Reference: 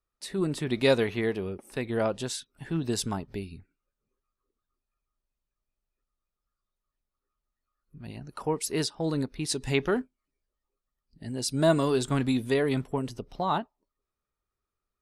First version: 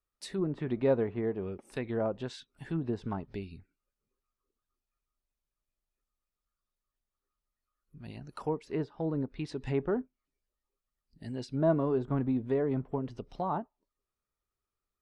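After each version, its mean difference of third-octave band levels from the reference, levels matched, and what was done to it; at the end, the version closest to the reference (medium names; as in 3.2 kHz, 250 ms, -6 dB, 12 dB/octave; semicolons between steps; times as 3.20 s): 4.5 dB: low-pass that closes with the level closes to 1 kHz, closed at -24.5 dBFS; trim -3.5 dB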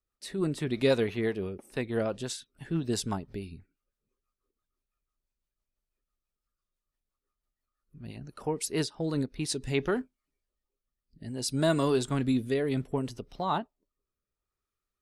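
1.5 dB: rotary cabinet horn 6 Hz, later 0.65 Hz, at 8.87 s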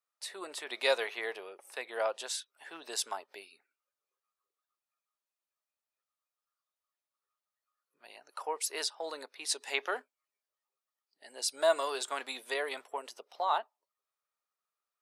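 10.0 dB: high-pass 570 Hz 24 dB/octave; trim -1.5 dB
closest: second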